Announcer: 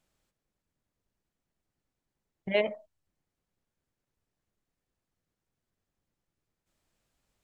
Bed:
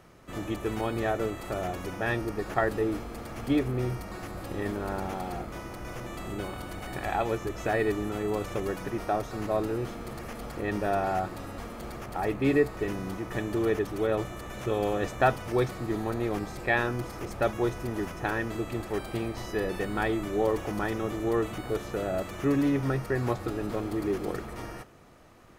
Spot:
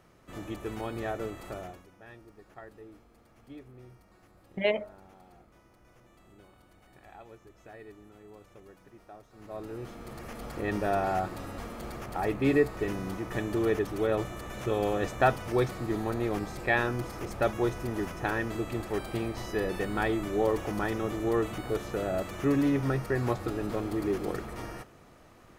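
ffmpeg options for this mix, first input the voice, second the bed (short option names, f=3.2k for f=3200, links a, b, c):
-filter_complex "[0:a]adelay=2100,volume=0dB[a];[1:a]volume=15.5dB,afade=t=out:st=1.47:d=0.39:silence=0.158489,afade=t=in:st=9.32:d=1.32:silence=0.0891251[b];[a][b]amix=inputs=2:normalize=0"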